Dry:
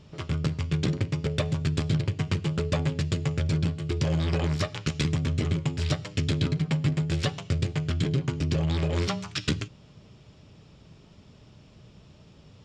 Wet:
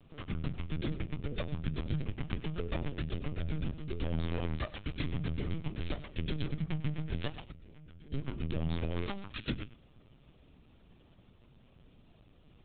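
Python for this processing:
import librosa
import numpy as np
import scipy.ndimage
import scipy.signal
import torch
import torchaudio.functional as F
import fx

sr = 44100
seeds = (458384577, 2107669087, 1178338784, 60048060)

y = fx.level_steps(x, sr, step_db=22, at=(7.49, 8.11), fade=0.02)
y = y + 10.0 ** (-16.5 / 20.0) * np.pad(y, (int(100 * sr / 1000.0), 0))[:len(y)]
y = fx.lpc_vocoder(y, sr, seeds[0], excitation='pitch_kept', order=16)
y = y * 10.0 ** (-8.0 / 20.0)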